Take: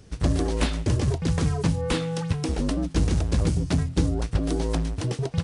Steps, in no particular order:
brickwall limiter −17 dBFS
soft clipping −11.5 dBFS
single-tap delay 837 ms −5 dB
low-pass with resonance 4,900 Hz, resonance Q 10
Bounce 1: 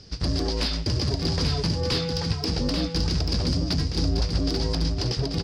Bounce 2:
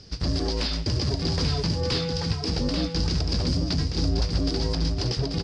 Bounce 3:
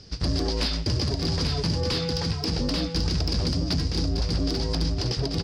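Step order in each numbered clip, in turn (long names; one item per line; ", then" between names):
low-pass with resonance, then soft clipping, then brickwall limiter, then single-tap delay
soft clipping, then low-pass with resonance, then brickwall limiter, then single-tap delay
low-pass with resonance, then soft clipping, then single-tap delay, then brickwall limiter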